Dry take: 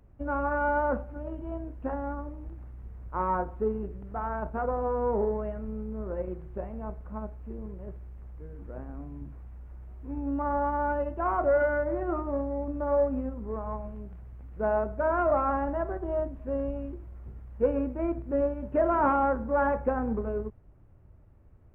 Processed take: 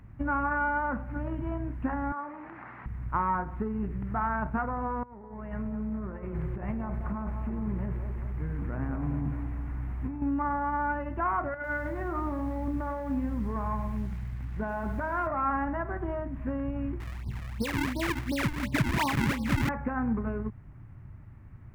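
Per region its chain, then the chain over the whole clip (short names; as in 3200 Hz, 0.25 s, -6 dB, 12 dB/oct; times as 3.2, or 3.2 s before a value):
2.12–2.86 BPF 610–2100 Hz + fast leveller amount 50%
5.03–10.22 negative-ratio compressor -40 dBFS + band-limited delay 0.205 s, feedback 57%, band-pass 580 Hz, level -4.5 dB
11.54–15.27 notch 1300 Hz, Q 16 + compressor 10:1, threshold -29 dBFS + lo-fi delay 98 ms, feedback 35%, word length 9-bit, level -11.5 dB
17–19.69 steep low-pass 1100 Hz 96 dB/oct + decimation with a swept rate 42×, swing 160% 2.8 Hz
whole clip: compressor, threshold -33 dBFS; ten-band EQ 125 Hz +10 dB, 250 Hz +5 dB, 500 Hz -9 dB, 1000 Hz +5 dB, 2000 Hz +11 dB; gain +3.5 dB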